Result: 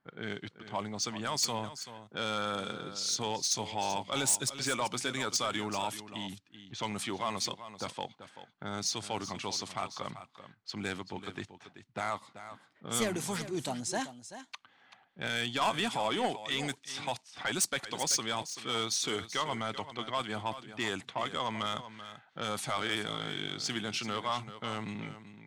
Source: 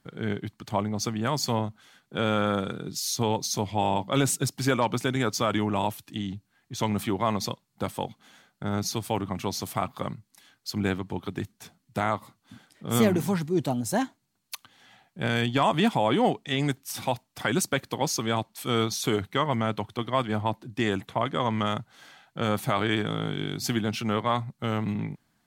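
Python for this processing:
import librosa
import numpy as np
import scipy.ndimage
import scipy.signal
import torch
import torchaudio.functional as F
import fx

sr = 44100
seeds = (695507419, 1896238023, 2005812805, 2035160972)

p1 = fx.env_lowpass(x, sr, base_hz=1400.0, full_db=-22.0)
p2 = scipy.signal.sosfilt(scipy.signal.butter(4, 9900.0, 'lowpass', fs=sr, output='sos'), p1)
p3 = fx.tilt_eq(p2, sr, slope=3.0)
p4 = fx.level_steps(p3, sr, step_db=22)
p5 = p3 + (p4 * librosa.db_to_amplitude(-1.0))
p6 = 10.0 ** (-16.5 / 20.0) * np.tanh(p5 / 10.0 ** (-16.5 / 20.0))
p7 = p6 + fx.echo_single(p6, sr, ms=385, db=-12.5, dry=0)
y = p7 * librosa.db_to_amplitude(-6.0)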